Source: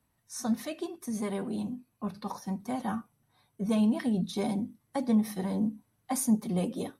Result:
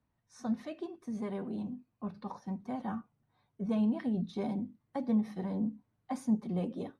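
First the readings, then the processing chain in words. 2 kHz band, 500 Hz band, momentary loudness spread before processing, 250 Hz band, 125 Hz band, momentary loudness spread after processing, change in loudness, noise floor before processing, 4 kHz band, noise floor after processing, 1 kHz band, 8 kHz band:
-7.5 dB, -4.5 dB, 11 LU, -4.0 dB, -4.0 dB, 11 LU, -4.5 dB, -75 dBFS, under -10 dB, -80 dBFS, -5.5 dB, under -15 dB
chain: tape spacing loss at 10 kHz 21 dB; trim -3.5 dB

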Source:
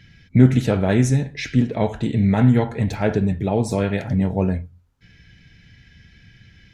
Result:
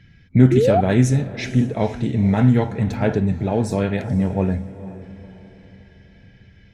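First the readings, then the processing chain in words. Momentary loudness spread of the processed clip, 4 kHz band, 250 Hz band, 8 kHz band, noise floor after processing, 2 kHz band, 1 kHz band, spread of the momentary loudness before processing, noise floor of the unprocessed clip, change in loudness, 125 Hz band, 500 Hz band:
9 LU, -1.0 dB, +0.5 dB, -0.5 dB, -50 dBFS, -0.5 dB, +3.0 dB, 7 LU, -53 dBFS, +0.5 dB, +0.5 dB, +2.5 dB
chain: on a send: echo that smears into a reverb 494 ms, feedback 42%, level -14.5 dB; on the sum: painted sound rise, 0.51–0.81 s, 330–780 Hz -16 dBFS; tape noise reduction on one side only decoder only

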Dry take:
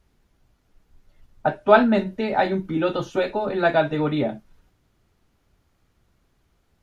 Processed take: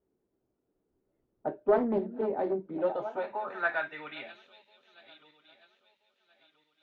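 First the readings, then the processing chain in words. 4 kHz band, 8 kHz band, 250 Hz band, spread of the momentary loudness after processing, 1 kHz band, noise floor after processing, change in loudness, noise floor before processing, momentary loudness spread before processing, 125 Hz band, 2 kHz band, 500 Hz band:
-15.5 dB, no reading, -12.5 dB, 14 LU, -12.0 dB, -80 dBFS, -10.0 dB, -67 dBFS, 10 LU, -18.5 dB, -8.5 dB, -9.0 dB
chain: backward echo that repeats 664 ms, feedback 54%, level -14 dB; band-pass sweep 380 Hz -> 3.3 kHz, 2.42–4.43 s; loudspeaker Doppler distortion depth 0.29 ms; trim -2.5 dB

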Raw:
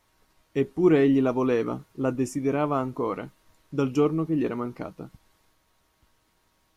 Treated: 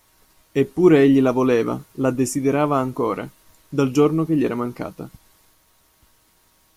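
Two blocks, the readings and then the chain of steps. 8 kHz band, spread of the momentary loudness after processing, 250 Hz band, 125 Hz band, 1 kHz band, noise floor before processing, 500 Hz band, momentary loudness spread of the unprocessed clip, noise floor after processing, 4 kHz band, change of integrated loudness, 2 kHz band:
+12.0 dB, 15 LU, +6.0 dB, +6.0 dB, +6.0 dB, -68 dBFS, +6.0 dB, 15 LU, -60 dBFS, +8.5 dB, +6.0 dB, +7.0 dB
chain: treble shelf 6.4 kHz +10.5 dB; trim +6 dB

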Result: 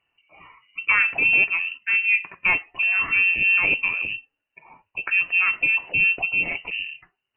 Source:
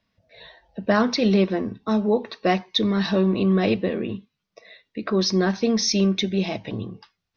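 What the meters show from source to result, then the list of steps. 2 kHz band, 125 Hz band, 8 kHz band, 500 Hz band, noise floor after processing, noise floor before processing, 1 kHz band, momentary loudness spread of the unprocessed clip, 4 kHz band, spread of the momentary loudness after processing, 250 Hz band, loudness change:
+15.5 dB, -19.0 dB, no reading, -20.0 dB, -81 dBFS, -80 dBFS, -5.0 dB, 13 LU, -7.5 dB, 12 LU, -24.0 dB, +3.0 dB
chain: Chebyshev shaper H 2 -25 dB, 4 -30 dB, 8 -45 dB, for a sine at -6 dBFS; frequency inversion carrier 2.9 kHz

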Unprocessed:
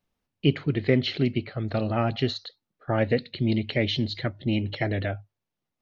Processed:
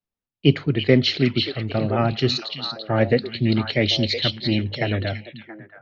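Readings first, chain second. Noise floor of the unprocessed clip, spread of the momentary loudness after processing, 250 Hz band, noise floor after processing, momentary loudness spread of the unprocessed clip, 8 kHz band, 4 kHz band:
-85 dBFS, 10 LU, +4.5 dB, under -85 dBFS, 7 LU, no reading, +9.5 dB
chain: dynamic bell 5.4 kHz, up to +8 dB, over -50 dBFS, Q 1.5; repeats whose band climbs or falls 338 ms, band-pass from 3.2 kHz, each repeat -1.4 oct, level -1.5 dB; three bands expanded up and down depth 40%; trim +4 dB

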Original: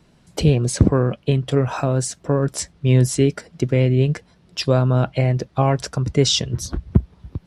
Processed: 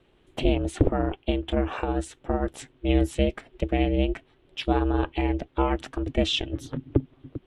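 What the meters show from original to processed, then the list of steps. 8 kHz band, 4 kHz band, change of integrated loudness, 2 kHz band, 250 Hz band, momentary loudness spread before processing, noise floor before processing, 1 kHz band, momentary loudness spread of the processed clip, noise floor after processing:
-17.5 dB, -6.5 dB, -7.0 dB, -3.5 dB, -4.5 dB, 9 LU, -55 dBFS, -3.0 dB, 9 LU, -62 dBFS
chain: ring modulator 200 Hz; resonant high shelf 4 kHz -7.5 dB, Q 3; trim -4 dB

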